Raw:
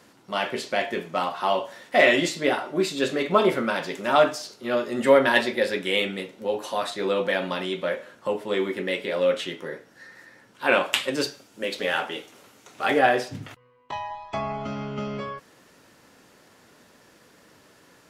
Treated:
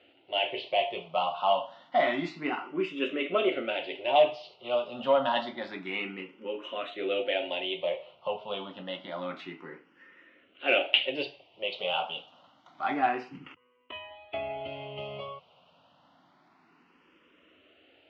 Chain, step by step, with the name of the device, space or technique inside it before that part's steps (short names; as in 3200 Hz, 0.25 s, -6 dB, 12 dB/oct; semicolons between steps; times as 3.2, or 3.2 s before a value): barber-pole phaser into a guitar amplifier (endless phaser +0.28 Hz; soft clip -9.5 dBFS, distortion -24 dB; speaker cabinet 84–3400 Hz, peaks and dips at 120 Hz -9 dB, 210 Hz -8 dB, 450 Hz -5 dB, 700 Hz +5 dB, 1700 Hz -10 dB, 2900 Hz +10 dB); gain -2.5 dB